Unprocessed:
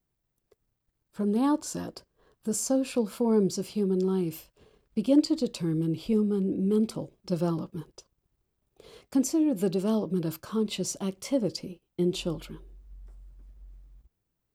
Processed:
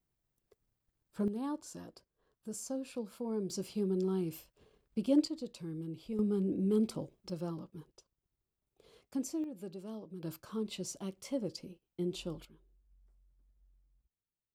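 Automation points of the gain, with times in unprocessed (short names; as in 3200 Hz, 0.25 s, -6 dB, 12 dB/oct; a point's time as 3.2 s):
-4 dB
from 1.28 s -13 dB
from 3.5 s -6.5 dB
from 5.28 s -13.5 dB
from 6.19 s -5 dB
from 7.3 s -11.5 dB
from 9.44 s -18 dB
from 10.23 s -9.5 dB
from 12.45 s -19 dB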